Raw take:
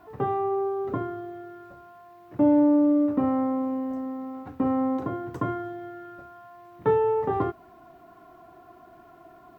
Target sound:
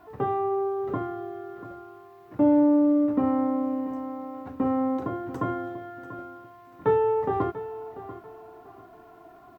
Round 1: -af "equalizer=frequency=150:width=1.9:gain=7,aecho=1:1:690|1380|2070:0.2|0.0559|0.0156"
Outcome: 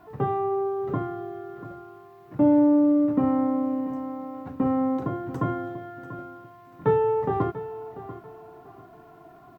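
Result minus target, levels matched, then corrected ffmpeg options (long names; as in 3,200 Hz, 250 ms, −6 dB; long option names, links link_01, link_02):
125 Hz band +5.0 dB
-af "equalizer=frequency=150:width=1.9:gain=-2.5,aecho=1:1:690|1380|2070:0.2|0.0559|0.0156"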